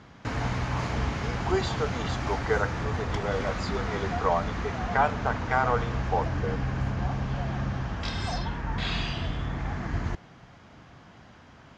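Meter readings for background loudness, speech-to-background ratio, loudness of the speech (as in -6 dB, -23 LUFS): -31.5 LUFS, 1.0 dB, -30.5 LUFS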